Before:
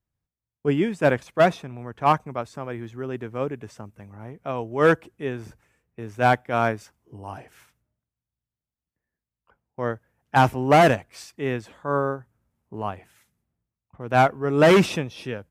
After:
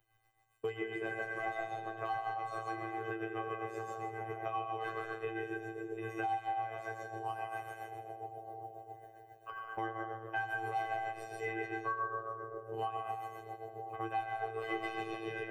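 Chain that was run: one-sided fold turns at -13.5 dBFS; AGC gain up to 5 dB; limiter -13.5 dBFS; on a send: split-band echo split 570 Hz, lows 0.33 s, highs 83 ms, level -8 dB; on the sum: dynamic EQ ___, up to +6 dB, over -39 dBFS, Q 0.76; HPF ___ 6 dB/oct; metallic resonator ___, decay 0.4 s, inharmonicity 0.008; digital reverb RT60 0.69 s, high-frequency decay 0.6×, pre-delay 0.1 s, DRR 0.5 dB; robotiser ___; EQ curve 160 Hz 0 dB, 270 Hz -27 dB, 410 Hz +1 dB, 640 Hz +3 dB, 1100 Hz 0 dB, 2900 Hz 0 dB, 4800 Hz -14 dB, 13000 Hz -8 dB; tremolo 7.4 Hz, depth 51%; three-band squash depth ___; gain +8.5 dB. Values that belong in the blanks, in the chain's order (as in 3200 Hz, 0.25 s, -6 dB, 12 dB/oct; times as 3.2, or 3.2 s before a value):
180 Hz, 72 Hz, 370 Hz, 112 Hz, 100%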